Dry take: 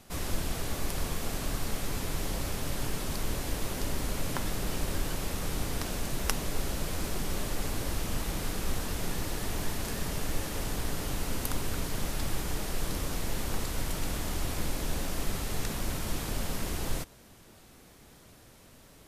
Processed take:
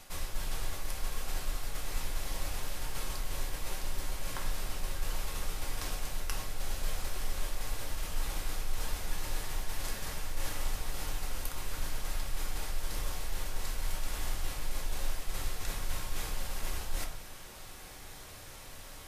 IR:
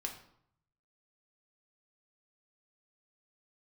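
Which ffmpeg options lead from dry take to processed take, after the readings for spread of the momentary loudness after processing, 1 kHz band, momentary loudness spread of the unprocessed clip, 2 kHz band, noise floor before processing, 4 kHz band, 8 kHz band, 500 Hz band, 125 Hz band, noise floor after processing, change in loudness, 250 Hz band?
2 LU, -4.0 dB, 1 LU, -3.5 dB, -55 dBFS, -3.5 dB, -4.0 dB, -8.5 dB, -7.0 dB, -48 dBFS, -5.0 dB, -12.5 dB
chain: -filter_complex "[0:a]equalizer=f=230:t=o:w=1.9:g=-12,areverse,acompressor=threshold=-41dB:ratio=10,areverse[a];[1:a]atrim=start_sample=2205[b];[a][b]afir=irnorm=-1:irlink=0,volume=9.5dB"

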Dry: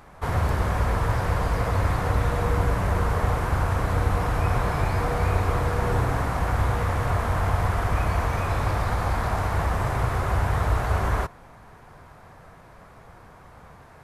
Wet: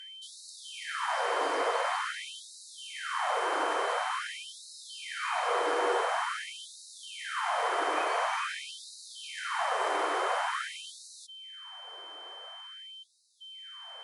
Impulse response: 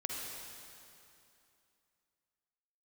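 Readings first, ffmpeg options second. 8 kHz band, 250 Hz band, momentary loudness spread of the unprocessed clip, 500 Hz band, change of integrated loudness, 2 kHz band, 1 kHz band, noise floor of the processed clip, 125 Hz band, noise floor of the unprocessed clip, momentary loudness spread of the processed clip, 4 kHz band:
0.0 dB, -16.0 dB, 2 LU, -5.0 dB, -7.0 dB, -2.0 dB, -3.5 dB, -50 dBFS, under -40 dB, -49 dBFS, 16 LU, +5.0 dB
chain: -af "aeval=exprs='val(0)+0.00631*sin(2*PI*3100*n/s)':c=same,afftfilt=real='re*between(b*sr/4096,110,11000)':imag='im*between(b*sr/4096,110,11000)':win_size=4096:overlap=0.75,afftfilt=real='re*gte(b*sr/1024,280*pow(3800/280,0.5+0.5*sin(2*PI*0.47*pts/sr)))':imag='im*gte(b*sr/1024,280*pow(3800/280,0.5+0.5*sin(2*PI*0.47*pts/sr)))':win_size=1024:overlap=0.75"

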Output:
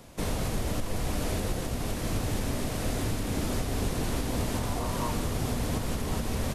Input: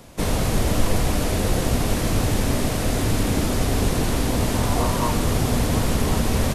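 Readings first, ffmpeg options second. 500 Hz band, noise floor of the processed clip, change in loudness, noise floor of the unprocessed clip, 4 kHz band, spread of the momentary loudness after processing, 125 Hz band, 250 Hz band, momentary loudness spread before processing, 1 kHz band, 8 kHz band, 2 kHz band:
-9.0 dB, -33 dBFS, -9.0 dB, -24 dBFS, -9.0 dB, 2 LU, -9.0 dB, -9.0 dB, 1 LU, -9.0 dB, -9.0 dB, -9.0 dB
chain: -af "alimiter=limit=-14.5dB:level=0:latency=1:release=434,volume=-5dB"

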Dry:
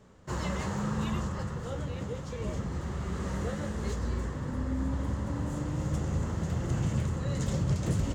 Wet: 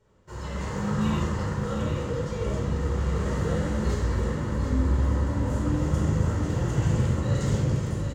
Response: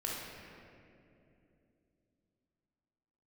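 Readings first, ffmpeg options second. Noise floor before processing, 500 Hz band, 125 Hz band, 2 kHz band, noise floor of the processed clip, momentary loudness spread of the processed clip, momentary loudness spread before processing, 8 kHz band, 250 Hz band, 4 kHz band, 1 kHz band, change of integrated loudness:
-38 dBFS, +7.0 dB, +6.0 dB, +5.0 dB, -35 dBFS, 5 LU, 6 LU, +2.5 dB, +5.0 dB, +4.0 dB, +5.0 dB, +6.0 dB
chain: -filter_complex "[0:a]dynaudnorm=f=190:g=7:m=10.5dB,aecho=1:1:742:0.447[a];[1:a]atrim=start_sample=2205,atrim=end_sample=6174[b];[a][b]afir=irnorm=-1:irlink=0,volume=-7dB"

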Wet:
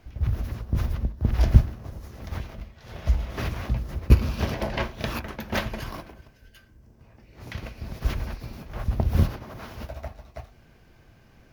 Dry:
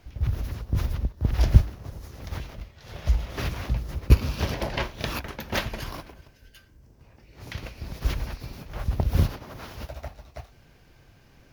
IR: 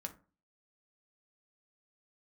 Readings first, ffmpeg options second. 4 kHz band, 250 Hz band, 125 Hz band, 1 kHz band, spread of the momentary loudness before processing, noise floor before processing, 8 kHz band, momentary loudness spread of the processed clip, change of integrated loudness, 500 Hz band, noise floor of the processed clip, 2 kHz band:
-2.5 dB, +2.0 dB, +0.5 dB, +0.5 dB, 19 LU, -56 dBFS, -3.0 dB, 19 LU, +0.5 dB, +1.0 dB, -56 dBFS, 0.0 dB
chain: -filter_complex "[0:a]asplit=2[a][b];[1:a]atrim=start_sample=2205,asetrate=52920,aresample=44100,lowpass=3k[c];[b][c]afir=irnorm=-1:irlink=0,volume=-1dB[d];[a][d]amix=inputs=2:normalize=0,volume=-2.5dB"

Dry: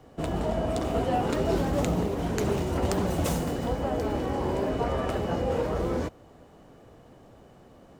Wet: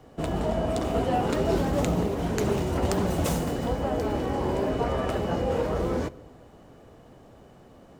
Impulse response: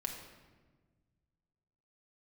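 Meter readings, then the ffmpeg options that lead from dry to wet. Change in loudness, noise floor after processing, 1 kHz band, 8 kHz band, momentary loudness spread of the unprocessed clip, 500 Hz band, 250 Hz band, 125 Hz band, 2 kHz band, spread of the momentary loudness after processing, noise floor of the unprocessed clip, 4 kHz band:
+1.0 dB, -52 dBFS, +1.0 dB, +1.0 dB, 3 LU, +1.5 dB, +1.0 dB, +1.0 dB, +1.0 dB, 3 LU, -53 dBFS, +1.5 dB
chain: -filter_complex "[0:a]asplit=2[a][b];[1:a]atrim=start_sample=2205[c];[b][c]afir=irnorm=-1:irlink=0,volume=-15dB[d];[a][d]amix=inputs=2:normalize=0"

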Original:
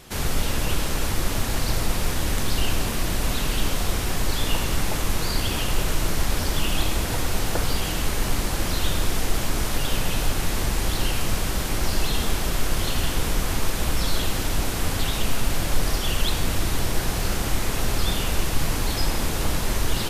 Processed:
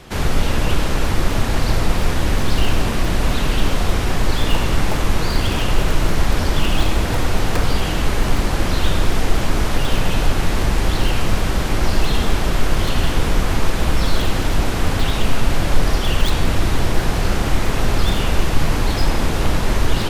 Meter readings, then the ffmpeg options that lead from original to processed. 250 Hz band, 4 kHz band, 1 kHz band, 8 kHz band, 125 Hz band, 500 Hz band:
+7.0 dB, +2.5 dB, +6.5 dB, -1.5 dB, +7.0 dB, +6.5 dB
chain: -filter_complex "[0:a]acrossover=split=270[a][b];[b]aeval=exprs='(mod(8.91*val(0)+1,2)-1)/8.91':c=same[c];[a][c]amix=inputs=2:normalize=0,lowpass=f=2.8k:p=1,volume=7dB"

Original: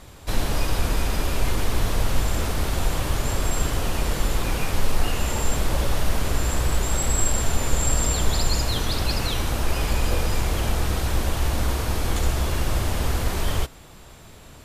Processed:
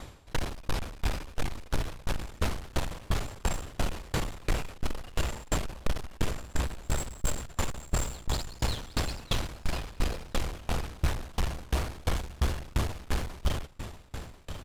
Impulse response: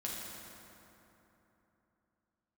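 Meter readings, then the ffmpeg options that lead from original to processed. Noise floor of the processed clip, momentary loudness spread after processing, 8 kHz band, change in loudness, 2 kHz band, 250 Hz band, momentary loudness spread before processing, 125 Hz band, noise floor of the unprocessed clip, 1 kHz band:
-50 dBFS, 5 LU, -12.0 dB, -9.5 dB, -8.0 dB, -8.0 dB, 3 LU, -8.5 dB, -45 dBFS, -8.5 dB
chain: -filter_complex "[0:a]highshelf=f=10k:g=-11,asplit=2[a][b];[b]alimiter=limit=-14dB:level=0:latency=1,volume=-3dB[c];[a][c]amix=inputs=2:normalize=0,asoftclip=type=hard:threshold=-20.5dB,aecho=1:1:1042:0.282,aeval=exprs='val(0)*pow(10,-29*if(lt(mod(2.9*n/s,1),2*abs(2.9)/1000),1-mod(2.9*n/s,1)/(2*abs(2.9)/1000),(mod(2.9*n/s,1)-2*abs(2.9)/1000)/(1-2*abs(2.9)/1000))/20)':c=same"

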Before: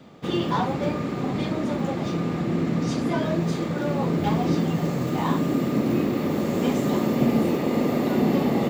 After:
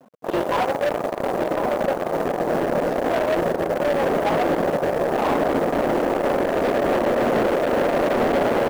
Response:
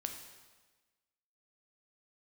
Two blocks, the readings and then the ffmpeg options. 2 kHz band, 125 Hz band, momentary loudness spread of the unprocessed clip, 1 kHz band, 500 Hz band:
+7.5 dB, -8.0 dB, 5 LU, +7.0 dB, +8.0 dB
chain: -filter_complex "[0:a]afftdn=nr=20:nf=-36,areverse,acompressor=mode=upward:threshold=-25dB:ratio=2.5,areverse,aeval=exprs='0.355*(cos(1*acos(clip(val(0)/0.355,-1,1)))-cos(1*PI/2))+0.00708*(cos(3*acos(clip(val(0)/0.355,-1,1)))-cos(3*PI/2))+0.00316*(cos(5*acos(clip(val(0)/0.355,-1,1)))-cos(5*PI/2))+0.00891*(cos(6*acos(clip(val(0)/0.355,-1,1)))-cos(6*PI/2))+0.0562*(cos(7*acos(clip(val(0)/0.355,-1,1)))-cos(7*PI/2))':c=same,asoftclip=type=tanh:threshold=-18.5dB,apsyclip=23dB,acrusher=bits=6:mix=0:aa=0.000001,bandpass=f=590:t=q:w=2:csg=0,acrusher=bits=5:mode=log:mix=0:aa=0.000001,asoftclip=type=hard:threshold=-16.5dB,asplit=2[a][b];[b]adelay=1050,volume=-7dB,highshelf=f=4k:g=-23.6[c];[a][c]amix=inputs=2:normalize=0,volume=-1dB"

